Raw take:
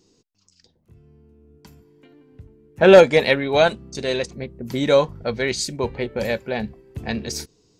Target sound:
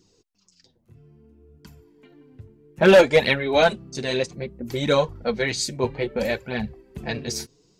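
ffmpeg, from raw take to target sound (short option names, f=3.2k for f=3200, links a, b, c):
-af "flanger=delay=0.5:depth=8.5:regen=-3:speed=0.61:shape=triangular,volume=10.5dB,asoftclip=hard,volume=-10.5dB,volume=2.5dB"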